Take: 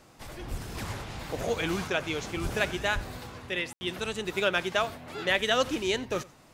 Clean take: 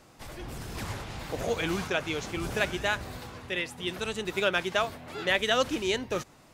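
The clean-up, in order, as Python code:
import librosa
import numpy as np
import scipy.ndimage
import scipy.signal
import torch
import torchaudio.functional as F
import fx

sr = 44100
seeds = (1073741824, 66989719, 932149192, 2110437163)

y = fx.fix_deplosive(x, sr, at_s=(0.5, 2.42, 2.94))
y = fx.fix_ambience(y, sr, seeds[0], print_start_s=6.02, print_end_s=6.52, start_s=3.73, end_s=3.81)
y = fx.fix_echo_inverse(y, sr, delay_ms=89, level_db=-21.5)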